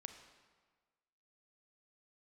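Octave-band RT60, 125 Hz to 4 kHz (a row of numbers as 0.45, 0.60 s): 1.4, 1.4, 1.5, 1.5, 1.3, 1.1 s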